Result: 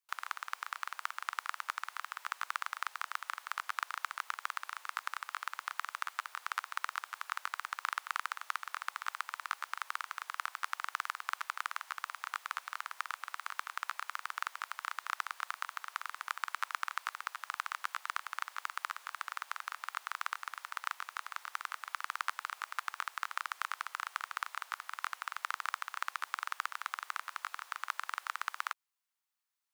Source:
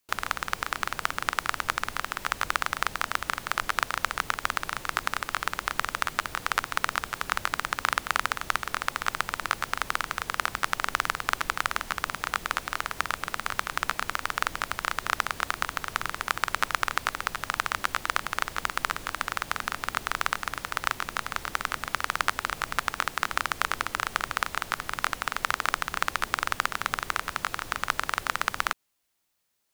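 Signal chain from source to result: ladder high-pass 820 Hz, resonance 35%; gain -5.5 dB

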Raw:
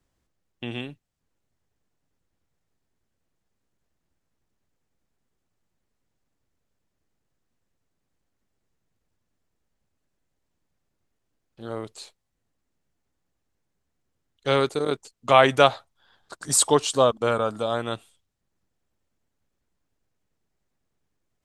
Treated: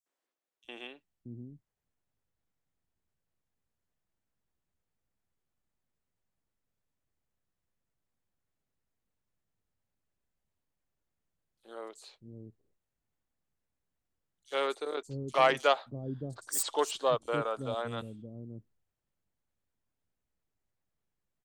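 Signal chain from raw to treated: self-modulated delay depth 0.06 ms; three bands offset in time highs, mids, lows 60/630 ms, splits 320/5300 Hz; gain -8 dB

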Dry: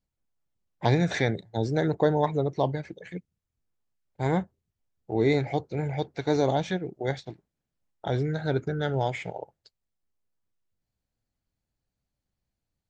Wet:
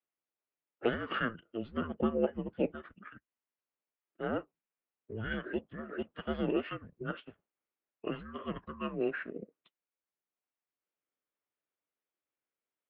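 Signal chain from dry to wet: formant shift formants -3 st; added harmonics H 7 -42 dB, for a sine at -9 dBFS; mistuned SSB -230 Hz 510–3100 Hz; gain -1.5 dB

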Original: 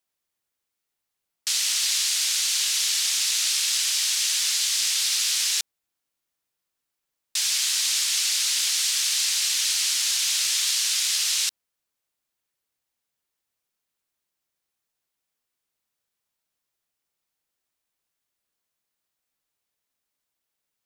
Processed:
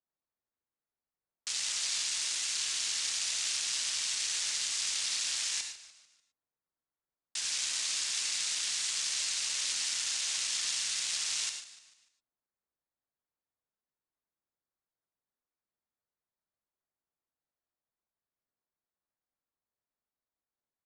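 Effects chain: Wiener smoothing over 15 samples; downsampling 22050 Hz; on a send: frequency-shifting echo 0.148 s, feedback 43%, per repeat -82 Hz, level -14.5 dB; on the sum: non-linear reverb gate 0.13 s rising, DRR 5.5 dB; gain -7 dB

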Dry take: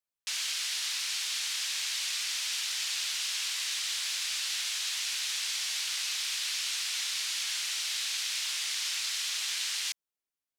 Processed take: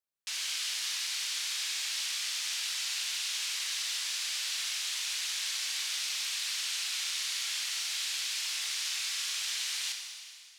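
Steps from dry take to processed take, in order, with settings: Schroeder reverb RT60 2.1 s, combs from 28 ms, DRR 3 dB; gain -3 dB

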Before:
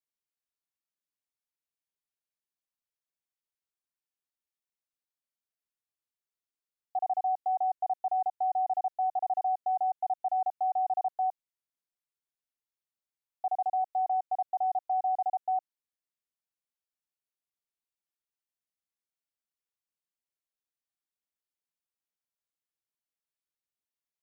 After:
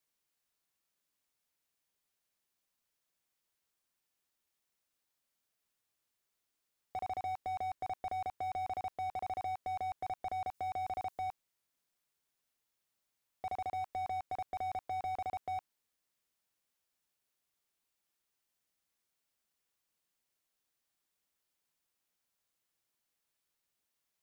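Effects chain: 10.54–11.27 tone controls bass +1 dB, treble +8 dB; slew limiter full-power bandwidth 4.4 Hz; gain +9 dB

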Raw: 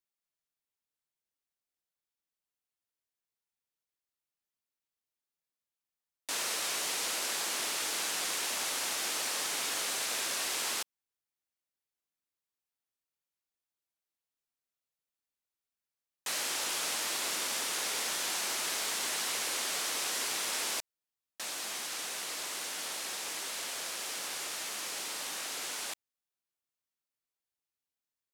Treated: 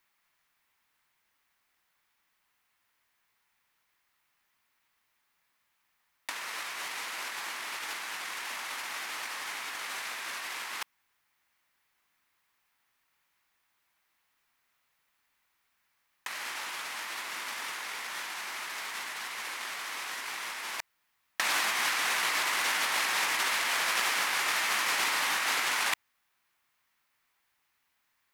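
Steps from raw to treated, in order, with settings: graphic EQ 500/1000/2000/8000 Hz -4/+8/+9/-4 dB; negative-ratio compressor -38 dBFS, ratio -0.5; gain +6.5 dB

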